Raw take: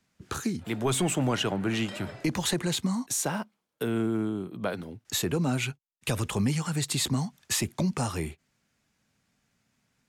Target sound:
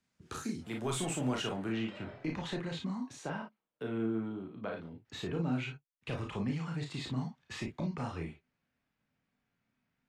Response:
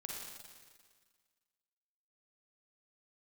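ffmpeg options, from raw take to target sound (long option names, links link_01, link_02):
-filter_complex "[0:a]asetnsamples=nb_out_samples=441:pad=0,asendcmd='1.69 lowpass f 3000',lowpass=11000[link_01];[1:a]atrim=start_sample=2205,atrim=end_sample=4410,asetrate=70560,aresample=44100[link_02];[link_01][link_02]afir=irnorm=-1:irlink=0"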